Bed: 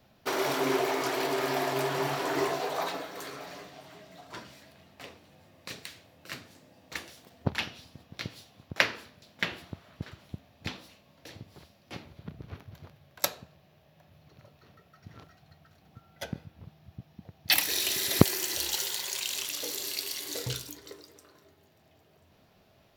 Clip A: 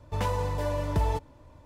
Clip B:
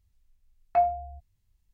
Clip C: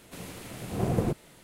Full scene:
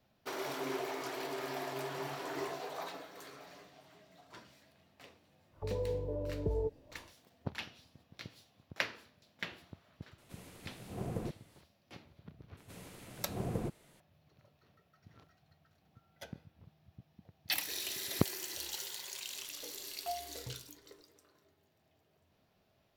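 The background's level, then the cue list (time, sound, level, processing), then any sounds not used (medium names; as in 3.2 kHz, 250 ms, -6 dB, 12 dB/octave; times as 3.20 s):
bed -10.5 dB
5.50 s: add A -10.5 dB, fades 0.10 s + touch-sensitive low-pass 440–1600 Hz down, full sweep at -31.5 dBFS
10.18 s: add C -12 dB
12.57 s: add C -10 dB
19.31 s: add B -17.5 dB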